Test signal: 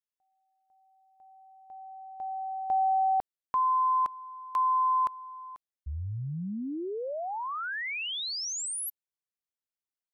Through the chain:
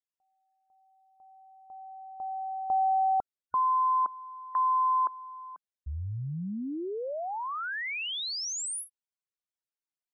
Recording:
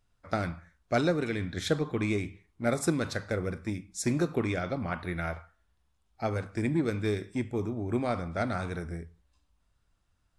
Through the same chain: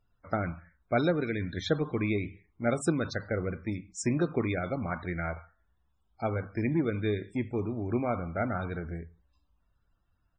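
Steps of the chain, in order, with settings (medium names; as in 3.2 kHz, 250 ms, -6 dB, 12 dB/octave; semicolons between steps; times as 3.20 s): resampled via 22.05 kHz; loudest bins only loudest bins 64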